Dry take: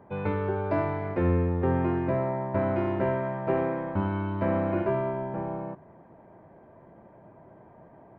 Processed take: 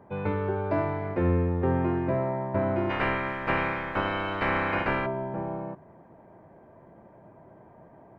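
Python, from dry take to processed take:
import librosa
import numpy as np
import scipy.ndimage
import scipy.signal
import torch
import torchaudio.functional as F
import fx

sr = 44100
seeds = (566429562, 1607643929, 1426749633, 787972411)

y = fx.spec_clip(x, sr, under_db=27, at=(2.89, 5.05), fade=0.02)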